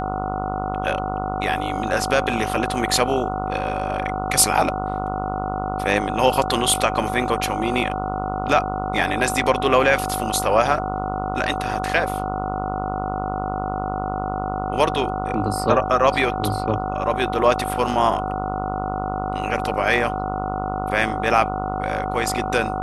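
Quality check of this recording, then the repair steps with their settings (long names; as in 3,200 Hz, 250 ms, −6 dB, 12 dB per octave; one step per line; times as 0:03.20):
mains buzz 50 Hz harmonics 29 −28 dBFS
whistle 750 Hz −27 dBFS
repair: hum removal 50 Hz, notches 29
notch filter 750 Hz, Q 30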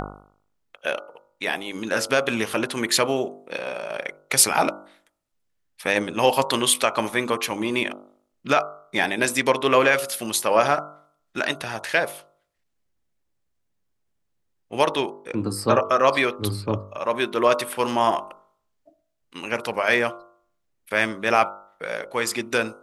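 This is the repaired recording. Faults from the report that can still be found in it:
none of them is left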